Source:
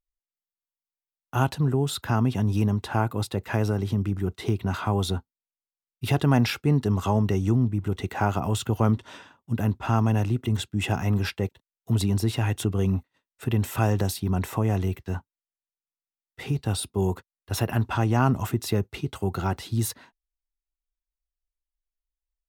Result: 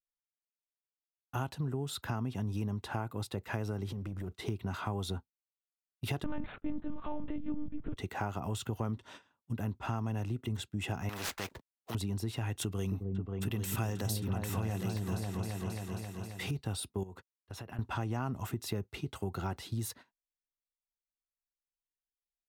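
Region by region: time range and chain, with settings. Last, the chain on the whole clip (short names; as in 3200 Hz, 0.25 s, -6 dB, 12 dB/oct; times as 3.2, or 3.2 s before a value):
3.88–4.33 compressor 10:1, threshold -30 dBFS + sample leveller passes 1
6.24–7.97 median filter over 15 samples + monotone LPC vocoder at 8 kHz 300 Hz
11.09–11.95 median filter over 15 samples + spectral compressor 4:1
12.61–16.51 expander -44 dBFS + high shelf 2100 Hz +9 dB + repeats that get brighter 0.268 s, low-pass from 400 Hz, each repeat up 2 oct, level -3 dB
17.03–17.79 compressor 10:1, threshold -34 dBFS + high shelf 11000 Hz -10.5 dB
whole clip: gate -42 dBFS, range -14 dB; compressor 3:1, threshold -27 dBFS; gain -6 dB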